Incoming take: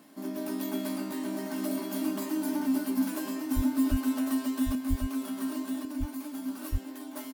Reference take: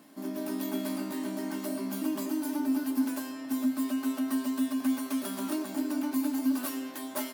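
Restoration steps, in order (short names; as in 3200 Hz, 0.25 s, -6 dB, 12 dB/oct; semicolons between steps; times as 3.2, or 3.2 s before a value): de-plosive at 3.55/3.9/4.89/6.71; inverse comb 1.1 s -4.5 dB; gain 0 dB, from 4.75 s +8 dB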